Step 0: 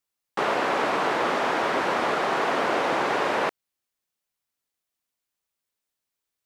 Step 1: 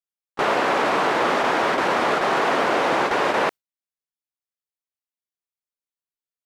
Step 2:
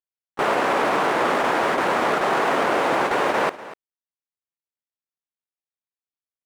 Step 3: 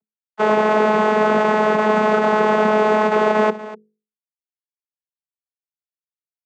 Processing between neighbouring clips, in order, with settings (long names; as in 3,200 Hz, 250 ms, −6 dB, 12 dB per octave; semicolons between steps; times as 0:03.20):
noise gate with hold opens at −15 dBFS; in parallel at +1 dB: brickwall limiter −21.5 dBFS, peak gain reduction 9.5 dB
running median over 9 samples; single-tap delay 244 ms −16.5 dB
variable-slope delta modulation 64 kbit/s; mains-hum notches 50/100/150/200/250/300/350/400/450 Hz; channel vocoder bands 16, saw 214 Hz; level +6 dB